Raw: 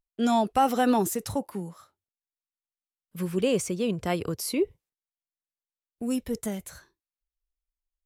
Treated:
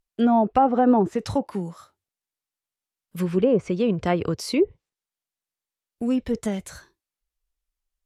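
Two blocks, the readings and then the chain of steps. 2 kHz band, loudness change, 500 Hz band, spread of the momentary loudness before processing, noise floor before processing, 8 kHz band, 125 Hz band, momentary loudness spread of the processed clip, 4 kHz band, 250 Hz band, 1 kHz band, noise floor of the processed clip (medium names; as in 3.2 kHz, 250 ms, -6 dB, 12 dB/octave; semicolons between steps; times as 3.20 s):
+0.5 dB, +4.5 dB, +5.0 dB, 15 LU, under -85 dBFS, -6.5 dB, +5.5 dB, 13 LU, -0.5 dB, +5.5 dB, +3.5 dB, under -85 dBFS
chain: low-pass that closes with the level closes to 910 Hz, closed at -19.5 dBFS; trim +5.5 dB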